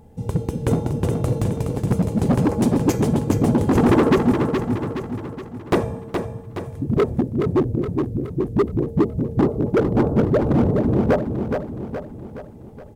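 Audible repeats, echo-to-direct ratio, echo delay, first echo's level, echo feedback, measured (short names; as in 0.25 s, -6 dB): 5, -4.5 dB, 0.42 s, -6.0 dB, 51%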